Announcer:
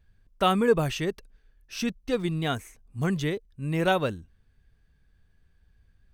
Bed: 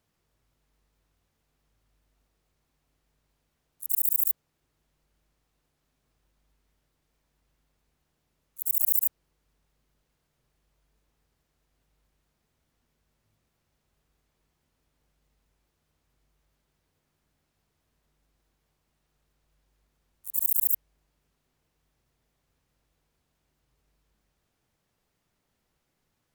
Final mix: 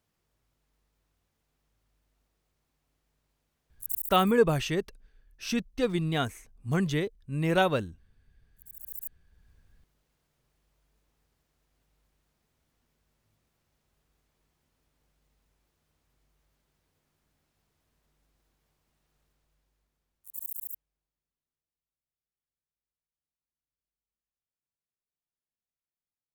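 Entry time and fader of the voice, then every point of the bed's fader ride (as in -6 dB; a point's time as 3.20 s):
3.70 s, -0.5 dB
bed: 3.88 s -2.5 dB
4.26 s -22 dB
8.77 s -22 dB
9.49 s 0 dB
19.22 s 0 dB
21.95 s -27.5 dB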